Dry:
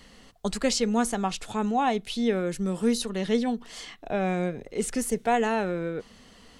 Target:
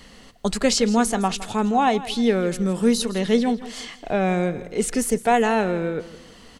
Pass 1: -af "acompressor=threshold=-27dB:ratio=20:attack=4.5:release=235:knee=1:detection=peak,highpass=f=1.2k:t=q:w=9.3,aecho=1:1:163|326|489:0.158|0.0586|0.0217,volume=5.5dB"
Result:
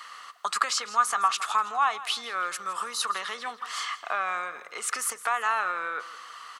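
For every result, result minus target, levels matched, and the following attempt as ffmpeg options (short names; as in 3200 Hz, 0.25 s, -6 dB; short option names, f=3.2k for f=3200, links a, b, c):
compressor: peak gain reduction +11.5 dB; 1000 Hz band +4.5 dB
-af "highpass=f=1.2k:t=q:w=9.3,aecho=1:1:163|326|489:0.158|0.0586|0.0217,volume=5.5dB"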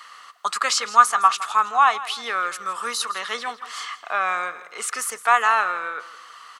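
1000 Hz band +5.0 dB
-af "aecho=1:1:163|326|489:0.158|0.0586|0.0217,volume=5.5dB"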